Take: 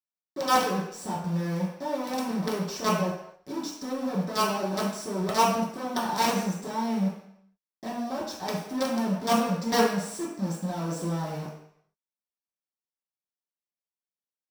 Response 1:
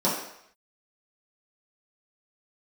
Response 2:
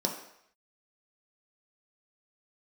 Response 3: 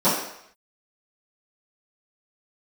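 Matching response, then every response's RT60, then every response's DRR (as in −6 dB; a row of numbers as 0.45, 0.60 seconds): 1; 0.70, 0.70, 0.70 seconds; −9.0, 0.0, −16.0 decibels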